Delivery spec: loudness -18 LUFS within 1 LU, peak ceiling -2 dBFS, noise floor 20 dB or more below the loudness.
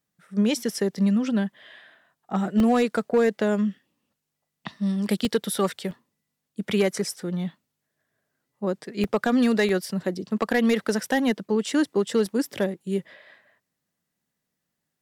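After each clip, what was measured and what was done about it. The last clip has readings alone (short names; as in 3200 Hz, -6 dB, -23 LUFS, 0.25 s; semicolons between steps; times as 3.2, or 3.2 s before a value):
clipped 0.2%; flat tops at -13.5 dBFS; dropouts 6; longest dropout 1.2 ms; loudness -25.0 LUFS; peak -13.5 dBFS; loudness target -18.0 LUFS
-> clip repair -13.5 dBFS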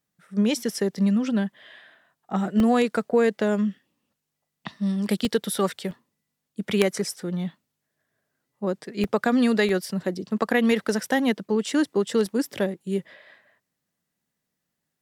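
clipped 0.0%; dropouts 6; longest dropout 1.2 ms
-> interpolate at 2.6/5.25/5.91/9.04/9.69/12.26, 1.2 ms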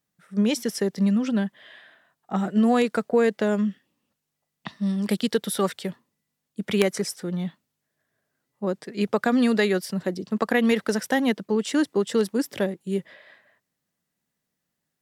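dropouts 0; loudness -24.5 LUFS; peak -4.5 dBFS; loudness target -18.0 LUFS
-> gain +6.5 dB; limiter -2 dBFS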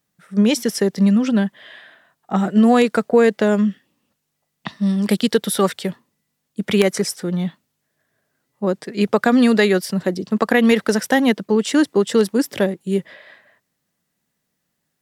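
loudness -18.0 LUFS; peak -2.0 dBFS; noise floor -75 dBFS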